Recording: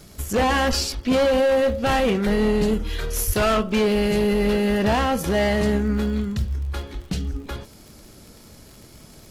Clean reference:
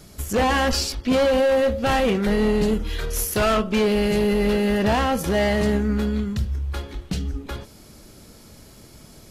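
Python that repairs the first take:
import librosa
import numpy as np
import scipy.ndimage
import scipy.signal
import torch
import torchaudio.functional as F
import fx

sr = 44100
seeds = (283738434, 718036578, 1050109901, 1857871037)

y = fx.fix_declick_ar(x, sr, threshold=6.5)
y = fx.highpass(y, sr, hz=140.0, slope=24, at=(3.26, 3.38), fade=0.02)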